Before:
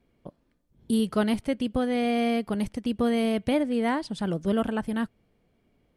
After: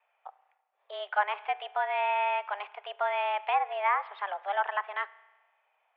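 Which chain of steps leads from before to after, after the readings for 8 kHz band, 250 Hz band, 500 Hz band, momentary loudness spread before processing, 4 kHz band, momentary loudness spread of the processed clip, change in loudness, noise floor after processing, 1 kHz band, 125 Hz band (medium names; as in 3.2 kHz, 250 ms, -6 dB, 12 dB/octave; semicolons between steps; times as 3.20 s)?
under -35 dB, under -40 dB, -6.5 dB, 6 LU, -5.0 dB, 10 LU, -3.5 dB, -75 dBFS, +6.5 dB, under -40 dB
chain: spring tank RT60 1.2 s, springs 33 ms, chirp 50 ms, DRR 18 dB; mistuned SSB +200 Hz 570–2700 Hz; low-pass that closes with the level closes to 2.1 kHz, closed at -26 dBFS; trim +4 dB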